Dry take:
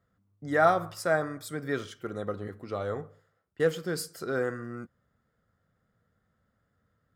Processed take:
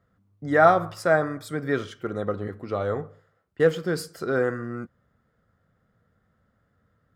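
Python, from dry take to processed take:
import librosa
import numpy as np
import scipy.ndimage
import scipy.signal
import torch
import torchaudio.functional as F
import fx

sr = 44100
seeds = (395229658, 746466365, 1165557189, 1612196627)

y = fx.high_shelf(x, sr, hz=4700.0, db=-9.5)
y = y * 10.0 ** (6.0 / 20.0)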